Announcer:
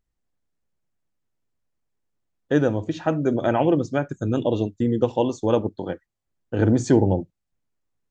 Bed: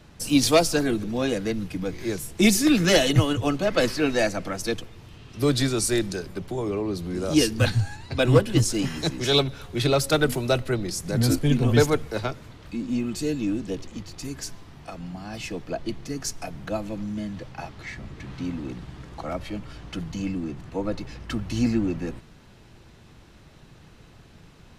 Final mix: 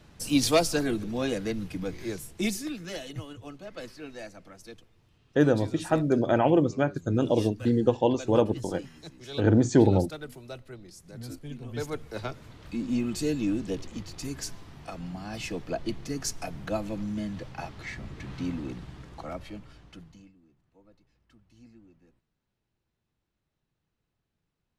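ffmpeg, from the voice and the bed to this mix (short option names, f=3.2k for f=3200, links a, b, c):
-filter_complex "[0:a]adelay=2850,volume=-2dB[a];[1:a]volume=13.5dB,afade=t=out:st=1.9:d=0.87:silence=0.177828,afade=t=in:st=11.71:d=1.08:silence=0.133352,afade=t=out:st=18.49:d=1.83:silence=0.0316228[b];[a][b]amix=inputs=2:normalize=0"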